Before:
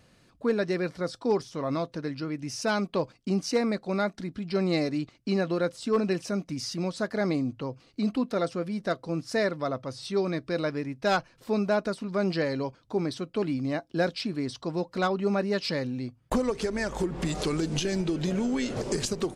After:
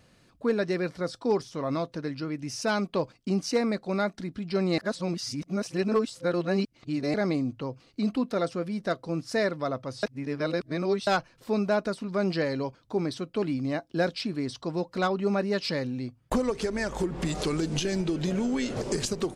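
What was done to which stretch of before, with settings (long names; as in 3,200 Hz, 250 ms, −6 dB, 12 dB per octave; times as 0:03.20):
0:04.78–0:07.14: reverse
0:10.03–0:11.07: reverse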